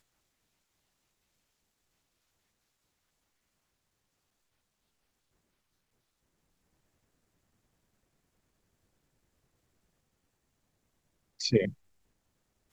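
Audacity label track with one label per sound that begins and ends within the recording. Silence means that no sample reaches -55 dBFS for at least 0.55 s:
11.390000	11.740000	sound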